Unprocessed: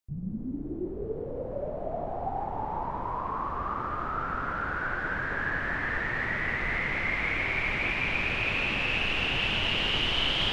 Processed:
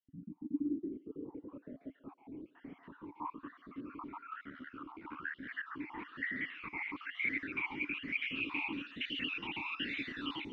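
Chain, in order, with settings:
time-frequency cells dropped at random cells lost 55%
0:04.41–0:05.49: ring modulation 37 Hz
feedback echo with a high-pass in the loop 140 ms, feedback 61%, high-pass 720 Hz, level −14 dB
formant filter swept between two vowels i-u 1.1 Hz
level +5.5 dB

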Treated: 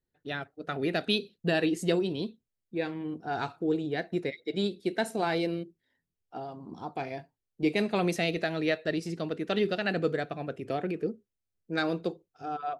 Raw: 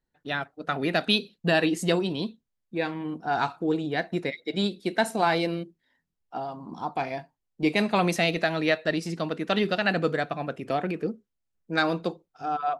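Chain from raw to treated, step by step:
graphic EQ with 15 bands 100 Hz +8 dB, 400 Hz +6 dB, 1,000 Hz −5 dB
level −5.5 dB

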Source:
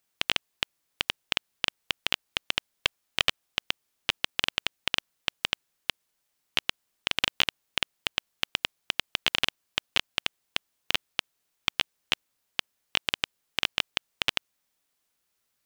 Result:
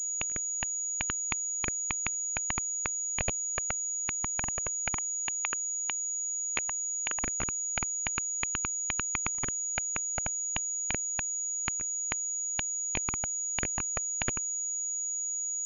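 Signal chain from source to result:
spectral dynamics exaggerated over time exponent 1.5
0:04.98–0:07.23: high-pass filter 550 Hz 12 dB per octave
treble cut that deepens with the level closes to 1,400 Hz, closed at −35 dBFS
dynamic equaliser 2,400 Hz, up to +7 dB, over −50 dBFS, Q 6.3
harmonic and percussive parts rebalanced percussive +4 dB
spectral tilt −1.5 dB per octave
flanger swept by the level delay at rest 10.4 ms, full sweep at −29 dBFS
gate with flip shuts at −10 dBFS, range −40 dB
surface crackle 13 per second −63 dBFS
switching amplifier with a slow clock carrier 6,800 Hz

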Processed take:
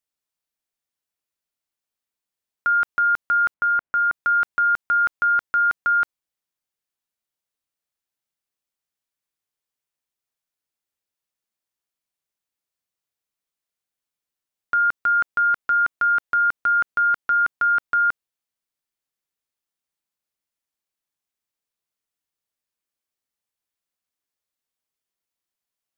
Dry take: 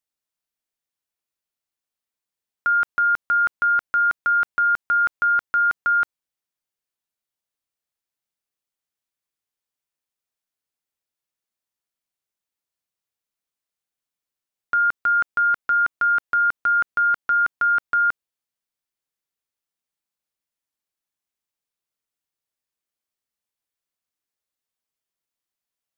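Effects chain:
0:03.54–0:04.12: low-pass filter 1,900 Hz 12 dB per octave

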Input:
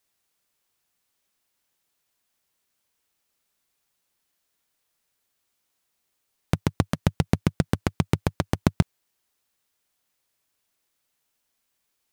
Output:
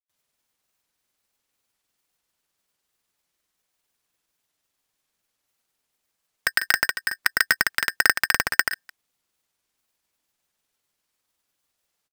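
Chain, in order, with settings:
granular cloud
ring modulator with a square carrier 1,700 Hz
level +1.5 dB

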